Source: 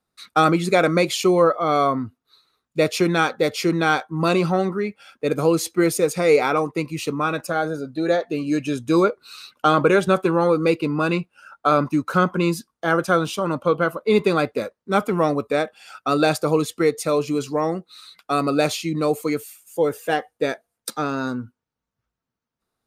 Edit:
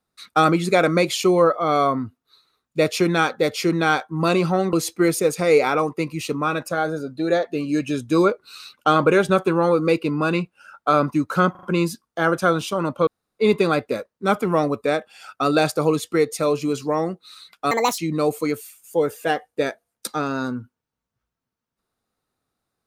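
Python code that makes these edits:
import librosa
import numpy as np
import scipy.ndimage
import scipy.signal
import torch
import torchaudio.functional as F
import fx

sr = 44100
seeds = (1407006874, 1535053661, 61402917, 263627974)

y = fx.edit(x, sr, fx.cut(start_s=4.73, length_s=0.78),
    fx.stutter(start_s=12.29, slice_s=0.04, count=4),
    fx.room_tone_fill(start_s=13.73, length_s=0.32),
    fx.speed_span(start_s=18.37, length_s=0.44, speed=1.62), tone=tone)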